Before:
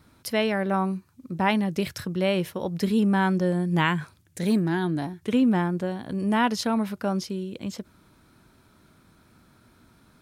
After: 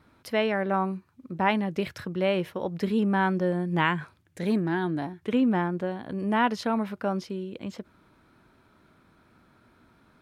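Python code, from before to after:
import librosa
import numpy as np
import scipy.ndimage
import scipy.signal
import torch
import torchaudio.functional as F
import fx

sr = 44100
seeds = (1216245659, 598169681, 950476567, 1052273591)

y = fx.bass_treble(x, sr, bass_db=-5, treble_db=-12)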